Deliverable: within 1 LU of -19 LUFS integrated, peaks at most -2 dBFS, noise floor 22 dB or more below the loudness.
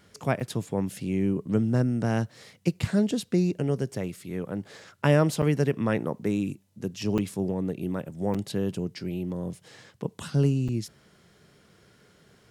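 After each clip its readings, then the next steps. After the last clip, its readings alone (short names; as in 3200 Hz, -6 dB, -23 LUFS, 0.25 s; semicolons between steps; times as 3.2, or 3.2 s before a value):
dropouts 5; longest dropout 6.2 ms; loudness -28.0 LUFS; peak -7.5 dBFS; loudness target -19.0 LUFS
-> interpolate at 0.4/5.42/7.18/8.34/10.68, 6.2 ms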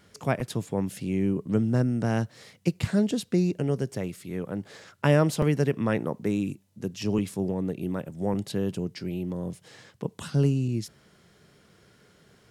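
dropouts 0; loudness -28.0 LUFS; peak -7.5 dBFS; loudness target -19.0 LUFS
-> gain +9 dB; limiter -2 dBFS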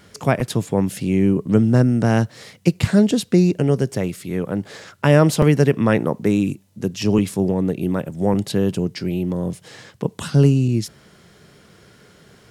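loudness -19.5 LUFS; peak -2.0 dBFS; noise floor -51 dBFS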